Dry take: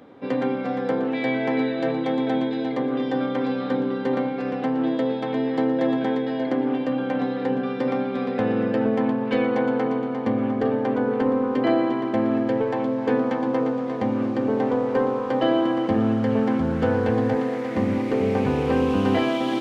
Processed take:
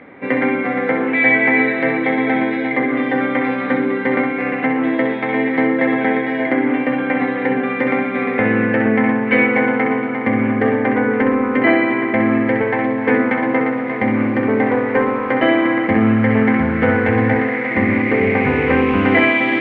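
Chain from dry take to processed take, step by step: synth low-pass 2100 Hz, resonance Q 7.1; flutter echo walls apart 11 m, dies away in 0.53 s; gain +5 dB

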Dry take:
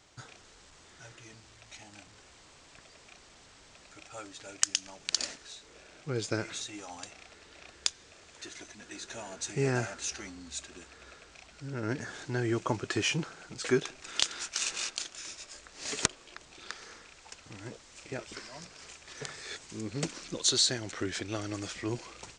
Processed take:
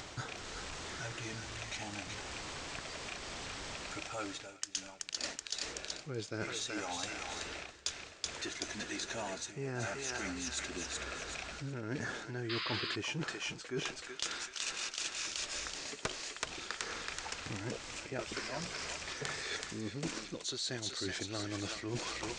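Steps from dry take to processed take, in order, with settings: high shelf 8600 Hz -10.5 dB; in parallel at -1 dB: upward compressor, threshold -38 dBFS; on the sum: thinning echo 0.378 s, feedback 44%, high-pass 1100 Hz, level -5 dB; reverse; compressor 20:1, threshold -36 dBFS, peak gain reduction 22 dB; reverse; painted sound noise, 12.49–12.96, 1000–5100 Hz -40 dBFS; gain +1 dB

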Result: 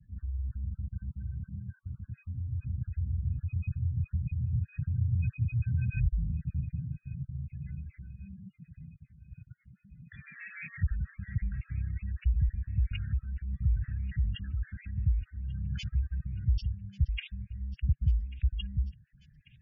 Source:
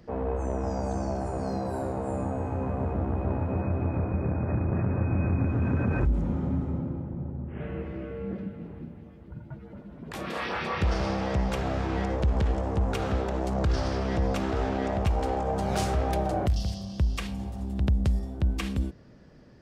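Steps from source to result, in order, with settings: random spectral dropouts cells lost 23%; EQ curve 910 Hz 0 dB, 1600 Hz +13 dB, 4200 Hz -1 dB; spectral gate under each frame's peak -10 dB strong; elliptic band-stop 140–2800 Hz, stop band 80 dB; thin delay 1.141 s, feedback 69%, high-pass 2000 Hz, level -18.5 dB

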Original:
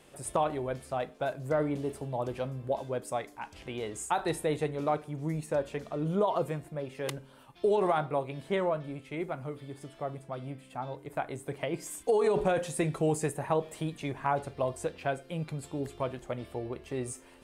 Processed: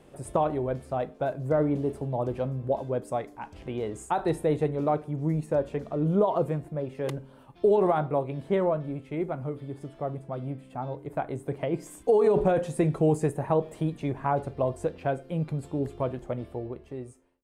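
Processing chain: ending faded out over 1.20 s; tilt shelf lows +6.5 dB, about 1200 Hz

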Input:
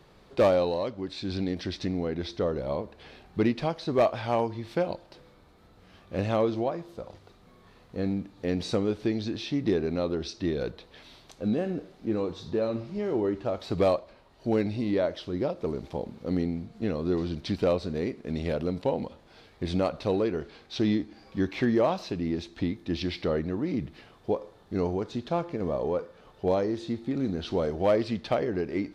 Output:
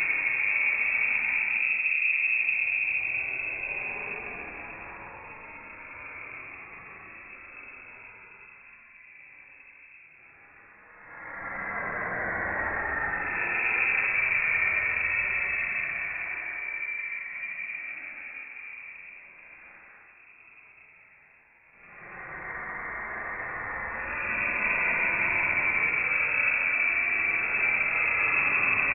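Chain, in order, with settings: cycle switcher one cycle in 2, inverted; one-sided clip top -30.5 dBFS, bottom -16 dBFS; sample leveller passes 5; bands offset in time highs, lows 90 ms, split 600 Hz; Paulstretch 25×, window 0.05 s, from 23.83; inverted band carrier 2600 Hz; gain -6.5 dB

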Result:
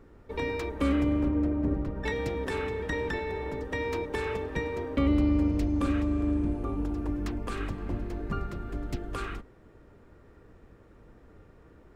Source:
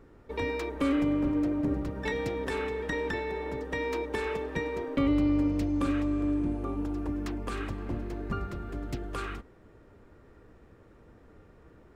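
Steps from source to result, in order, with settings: octaver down 2 oct, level -3 dB; 1.28–2.04 high shelf 3300 Hz -11.5 dB

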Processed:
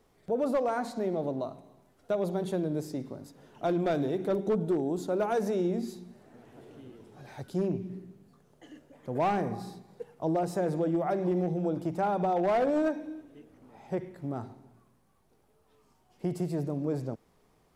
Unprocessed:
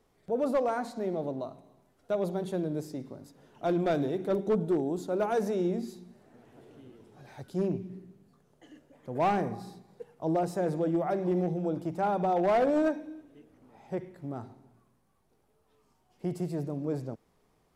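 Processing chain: compressor 2:1, threshold -30 dBFS, peak gain reduction 4.5 dB; gain +3 dB

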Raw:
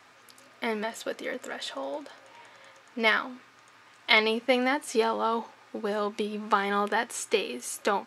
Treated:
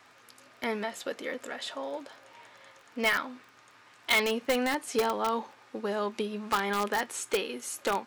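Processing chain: crackle 15/s -44 dBFS; in parallel at -5 dB: wrapped overs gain 16 dB; on the sum: gain -5.5 dB

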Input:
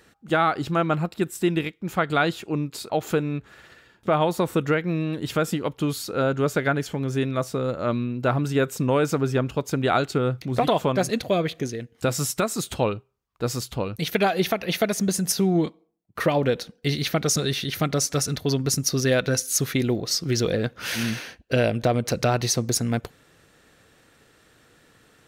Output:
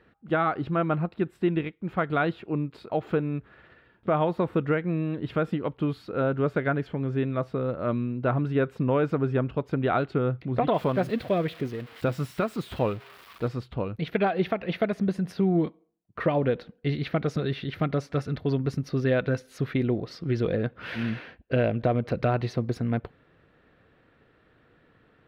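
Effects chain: 10.74–13.48 switching spikes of -19.5 dBFS; air absorption 440 m; notch 840 Hz, Q 23; gain -1.5 dB

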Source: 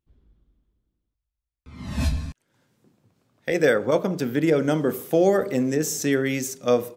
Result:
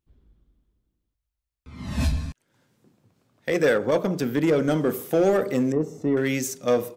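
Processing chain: in parallel at -9 dB: wavefolder -18.5 dBFS; 5.72–6.17 on the sum: polynomial smoothing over 65 samples; gain -2 dB

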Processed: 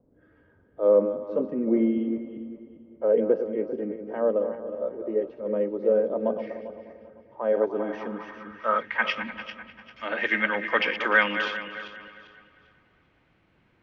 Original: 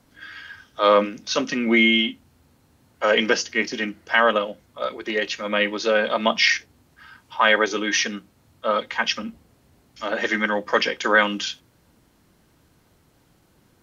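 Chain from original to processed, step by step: regenerating reverse delay 0.198 s, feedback 52%, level -9 dB; darkening echo 0.3 s, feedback 46%, low-pass 4600 Hz, level -16.5 dB; low-pass sweep 480 Hz -> 2400 Hz, 7.43–9.18; gain -6.5 dB

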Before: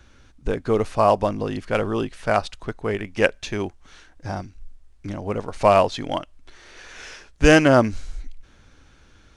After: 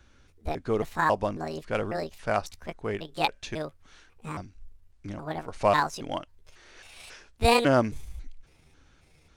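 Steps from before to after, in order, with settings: trilling pitch shifter +7.5 st, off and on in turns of 0.273 s; gain -6.5 dB

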